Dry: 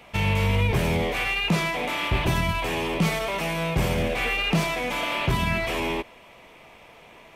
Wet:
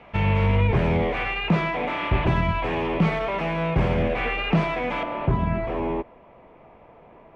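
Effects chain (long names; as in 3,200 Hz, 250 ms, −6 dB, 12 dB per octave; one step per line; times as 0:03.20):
low-pass filter 2,000 Hz 12 dB per octave, from 0:05.03 1,000 Hz
level +2.5 dB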